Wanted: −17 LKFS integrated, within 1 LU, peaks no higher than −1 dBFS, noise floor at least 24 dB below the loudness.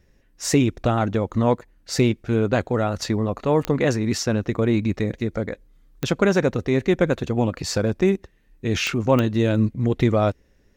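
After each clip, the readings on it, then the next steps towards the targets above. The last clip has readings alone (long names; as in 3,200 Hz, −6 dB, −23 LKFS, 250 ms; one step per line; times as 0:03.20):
number of clicks 4; integrated loudness −22.0 LKFS; sample peak −4.5 dBFS; target loudness −17.0 LKFS
→ click removal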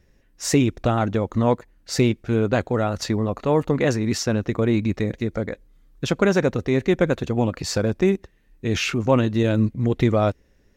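number of clicks 0; integrated loudness −22.0 LKFS; sample peak −4.5 dBFS; target loudness −17.0 LKFS
→ level +5 dB
brickwall limiter −1 dBFS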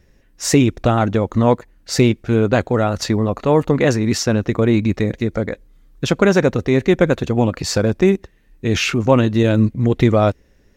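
integrated loudness −17.5 LKFS; sample peak −1.0 dBFS; background noise floor −54 dBFS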